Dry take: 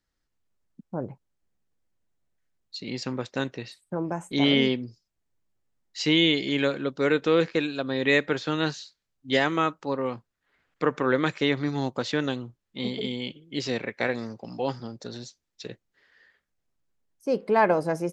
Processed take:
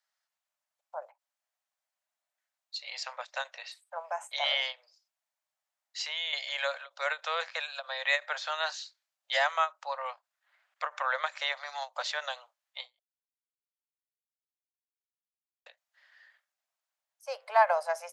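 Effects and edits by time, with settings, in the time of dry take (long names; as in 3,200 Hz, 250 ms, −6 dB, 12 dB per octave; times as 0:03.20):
0:04.72–0:06.33: downward compressor 1.5 to 1, threshold −37 dBFS
0:12.99–0:15.66: silence
whole clip: Butterworth high-pass 590 Hz 72 dB per octave; dynamic equaliser 2,600 Hz, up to −4 dB, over −38 dBFS, Q 1.5; every ending faded ahead of time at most 370 dB per second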